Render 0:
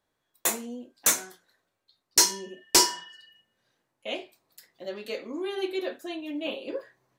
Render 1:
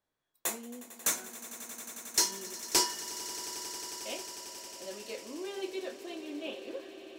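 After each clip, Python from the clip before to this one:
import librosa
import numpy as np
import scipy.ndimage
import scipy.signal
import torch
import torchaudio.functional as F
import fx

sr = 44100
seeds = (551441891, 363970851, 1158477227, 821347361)

y = fx.echo_swell(x, sr, ms=90, loudest=8, wet_db=-17.5)
y = y * librosa.db_to_amplitude(-7.5)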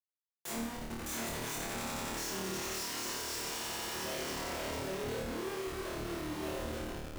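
y = fx.reverse_delay(x, sr, ms=436, wet_db=-8)
y = fx.schmitt(y, sr, flips_db=-41.0)
y = fx.room_flutter(y, sr, wall_m=4.5, rt60_s=0.76)
y = y * librosa.db_to_amplitude(-5.0)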